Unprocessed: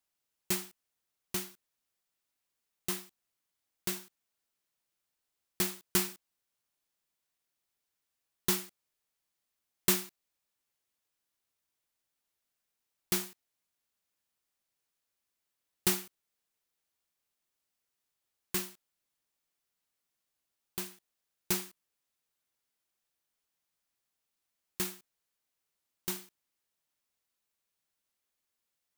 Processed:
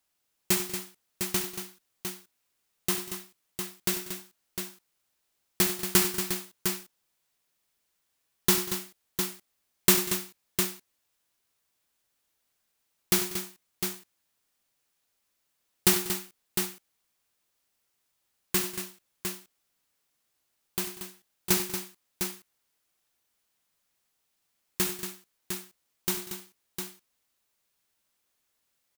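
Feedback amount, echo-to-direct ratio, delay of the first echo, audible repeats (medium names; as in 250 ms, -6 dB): no regular repeats, -4.0 dB, 66 ms, 4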